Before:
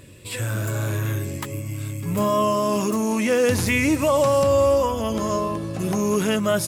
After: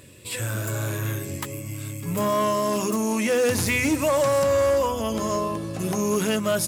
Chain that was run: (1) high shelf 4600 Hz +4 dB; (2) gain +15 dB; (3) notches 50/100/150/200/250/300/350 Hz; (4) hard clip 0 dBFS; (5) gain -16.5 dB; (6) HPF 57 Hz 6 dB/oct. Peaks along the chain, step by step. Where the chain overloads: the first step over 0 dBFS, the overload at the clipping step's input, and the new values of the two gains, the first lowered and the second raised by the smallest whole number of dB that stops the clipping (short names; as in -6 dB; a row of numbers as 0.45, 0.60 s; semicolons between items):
-8.5, +6.5, +6.5, 0.0, -16.5, -14.5 dBFS; step 2, 6.5 dB; step 2 +8 dB, step 5 -9.5 dB